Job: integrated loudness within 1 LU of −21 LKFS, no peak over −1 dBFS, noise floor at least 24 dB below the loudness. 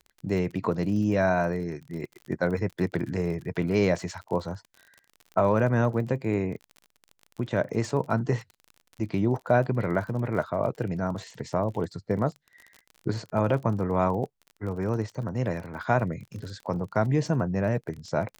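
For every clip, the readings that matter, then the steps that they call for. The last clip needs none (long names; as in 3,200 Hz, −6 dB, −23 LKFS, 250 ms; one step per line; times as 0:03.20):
crackle rate 37 per second; integrated loudness −28.0 LKFS; sample peak −9.0 dBFS; target loudness −21.0 LKFS
→ click removal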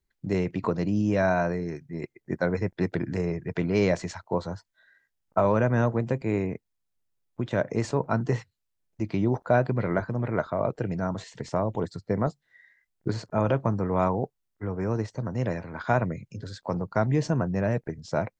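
crackle rate 0 per second; integrated loudness −28.0 LKFS; sample peak −9.0 dBFS; target loudness −21.0 LKFS
→ level +7 dB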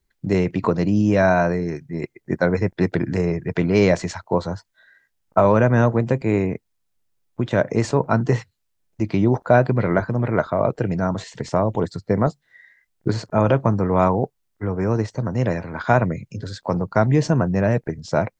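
integrated loudness −21.0 LKFS; sample peak −2.0 dBFS; background noise floor −72 dBFS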